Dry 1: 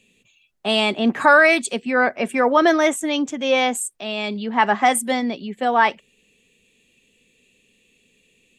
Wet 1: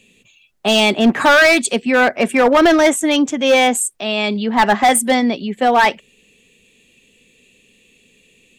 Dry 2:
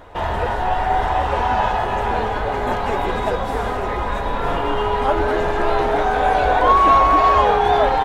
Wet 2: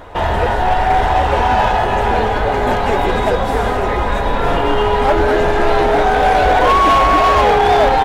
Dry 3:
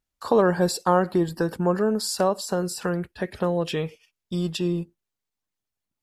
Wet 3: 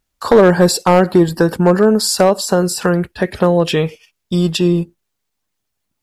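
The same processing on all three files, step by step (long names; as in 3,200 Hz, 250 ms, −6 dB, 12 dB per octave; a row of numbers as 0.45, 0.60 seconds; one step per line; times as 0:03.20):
dynamic equaliser 1,100 Hz, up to −4 dB, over −29 dBFS, Q 2.6
hard clipping −14 dBFS
loudness normalisation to −14 LKFS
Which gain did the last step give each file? +7.0, +6.5, +11.5 decibels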